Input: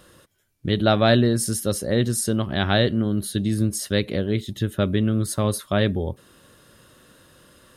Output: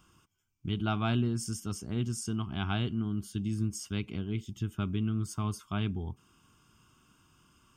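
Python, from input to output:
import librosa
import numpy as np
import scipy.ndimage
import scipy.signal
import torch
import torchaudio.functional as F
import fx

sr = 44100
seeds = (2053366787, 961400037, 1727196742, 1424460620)

y = fx.fixed_phaser(x, sr, hz=2700.0, stages=8)
y = F.gain(torch.from_numpy(y), -8.0).numpy()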